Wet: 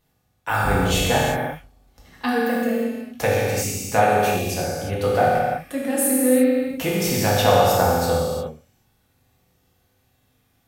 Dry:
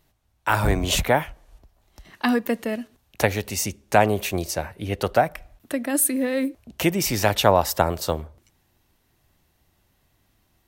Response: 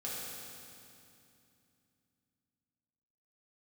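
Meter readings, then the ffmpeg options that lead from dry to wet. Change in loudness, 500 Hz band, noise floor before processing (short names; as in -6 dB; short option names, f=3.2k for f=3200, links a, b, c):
+2.5 dB, +4.0 dB, -67 dBFS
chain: -filter_complex "[1:a]atrim=start_sample=2205,afade=t=out:st=0.42:d=0.01,atrim=end_sample=18963[a];[0:a][a]afir=irnorm=-1:irlink=0"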